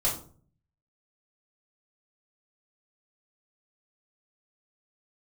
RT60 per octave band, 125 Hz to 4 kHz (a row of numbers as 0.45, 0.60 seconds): 0.85, 0.65, 0.50, 0.40, 0.30, 0.30 seconds